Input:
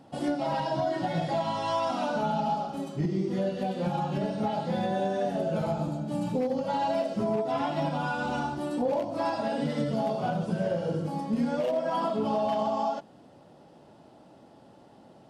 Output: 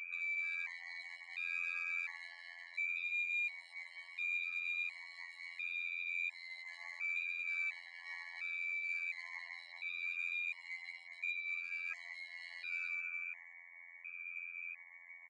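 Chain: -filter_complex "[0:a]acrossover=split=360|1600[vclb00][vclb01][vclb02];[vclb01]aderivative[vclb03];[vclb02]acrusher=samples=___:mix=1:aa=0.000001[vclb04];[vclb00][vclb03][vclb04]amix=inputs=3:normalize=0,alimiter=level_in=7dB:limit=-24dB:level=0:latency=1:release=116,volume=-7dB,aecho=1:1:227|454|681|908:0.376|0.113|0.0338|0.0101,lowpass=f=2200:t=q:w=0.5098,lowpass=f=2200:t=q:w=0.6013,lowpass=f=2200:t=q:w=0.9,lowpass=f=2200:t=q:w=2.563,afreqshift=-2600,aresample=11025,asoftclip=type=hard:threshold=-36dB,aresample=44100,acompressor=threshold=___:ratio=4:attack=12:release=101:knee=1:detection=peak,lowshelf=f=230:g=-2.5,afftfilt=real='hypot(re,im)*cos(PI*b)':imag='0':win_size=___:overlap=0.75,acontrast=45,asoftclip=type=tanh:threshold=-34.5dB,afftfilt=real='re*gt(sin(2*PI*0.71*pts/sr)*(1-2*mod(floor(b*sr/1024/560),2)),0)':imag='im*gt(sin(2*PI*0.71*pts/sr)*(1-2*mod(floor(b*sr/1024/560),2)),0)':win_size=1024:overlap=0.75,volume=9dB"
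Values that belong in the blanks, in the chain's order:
41, -51dB, 2048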